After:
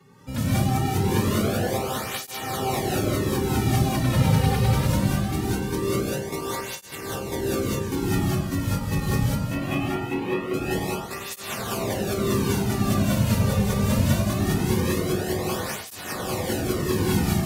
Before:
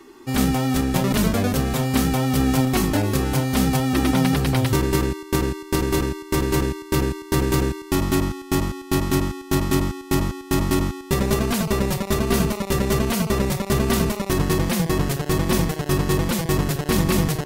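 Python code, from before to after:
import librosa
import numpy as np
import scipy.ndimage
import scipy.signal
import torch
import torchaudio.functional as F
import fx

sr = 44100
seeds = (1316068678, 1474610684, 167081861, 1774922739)

y = fx.octave_divider(x, sr, octaves=1, level_db=3.0)
y = fx.cabinet(y, sr, low_hz=220.0, low_slope=12, high_hz=3100.0, hz=(510.0, 740.0, 2600.0), db=(4, 8, 9), at=(9.48, 10.53), fade=0.02)
y = fx.echo_heads(y, sr, ms=198, heads='first and third', feedback_pct=53, wet_db=-10.0)
y = fx.rev_gated(y, sr, seeds[0], gate_ms=220, shape='rising', drr_db=-5.5)
y = fx.flanger_cancel(y, sr, hz=0.22, depth_ms=3.1)
y = y * 10.0 ** (-7.5 / 20.0)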